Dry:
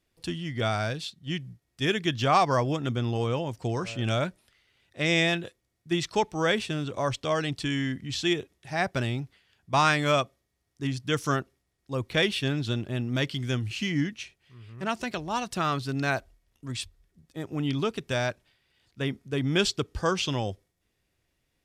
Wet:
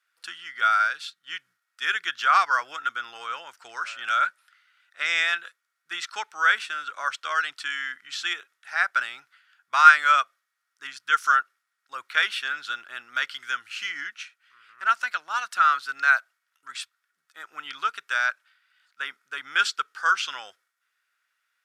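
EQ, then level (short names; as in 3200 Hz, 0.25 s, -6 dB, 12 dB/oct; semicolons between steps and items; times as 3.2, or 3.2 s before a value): resonant high-pass 1400 Hz, resonance Q 7.8; -1.5 dB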